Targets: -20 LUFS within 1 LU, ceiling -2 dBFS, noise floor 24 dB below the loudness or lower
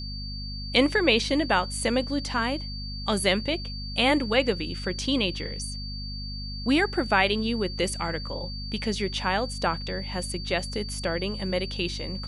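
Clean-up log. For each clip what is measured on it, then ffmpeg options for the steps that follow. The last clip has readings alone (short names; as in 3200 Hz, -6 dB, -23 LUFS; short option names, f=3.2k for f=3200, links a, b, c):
hum 50 Hz; harmonics up to 250 Hz; hum level -33 dBFS; steady tone 4600 Hz; tone level -37 dBFS; loudness -26.5 LUFS; peak -6.5 dBFS; loudness target -20.0 LUFS
-> -af "bandreject=f=50:t=h:w=4,bandreject=f=100:t=h:w=4,bandreject=f=150:t=h:w=4,bandreject=f=200:t=h:w=4,bandreject=f=250:t=h:w=4"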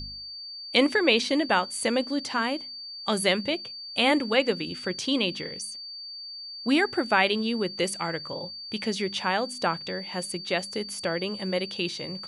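hum none; steady tone 4600 Hz; tone level -37 dBFS
-> -af "bandreject=f=4.6k:w=30"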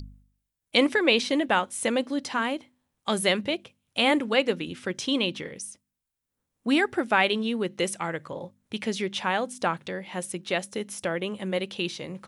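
steady tone none; loudness -27.0 LUFS; peak -7.0 dBFS; loudness target -20.0 LUFS
-> -af "volume=7dB,alimiter=limit=-2dB:level=0:latency=1"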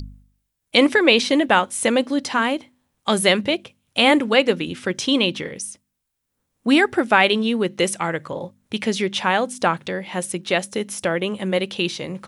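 loudness -20.0 LUFS; peak -2.0 dBFS; noise floor -77 dBFS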